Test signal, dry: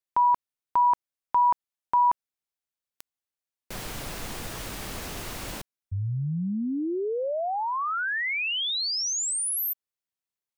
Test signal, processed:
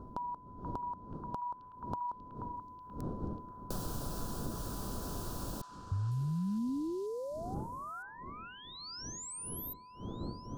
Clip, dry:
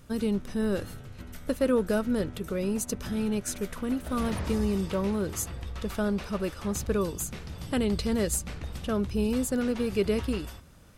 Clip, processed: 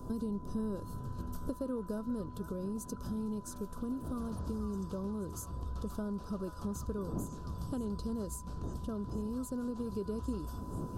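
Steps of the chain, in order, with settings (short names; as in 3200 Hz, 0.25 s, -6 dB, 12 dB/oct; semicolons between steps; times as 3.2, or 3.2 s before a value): wind noise 330 Hz -42 dBFS; high shelf 10000 Hz +4 dB; notch 2000 Hz, Q 17; compressor 4:1, threshold -40 dBFS; whine 1000 Hz -51 dBFS; vocal rider within 5 dB 2 s; EQ curve 250 Hz 0 dB, 840 Hz -7 dB, 1400 Hz -7 dB, 2100 Hz -30 dB, 3000 Hz -17 dB, 4500 Hz -8 dB; delay with a stepping band-pass 0.482 s, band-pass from 1300 Hz, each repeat 0.7 oct, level -5 dB; slew limiter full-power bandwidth 150 Hz; gain +4 dB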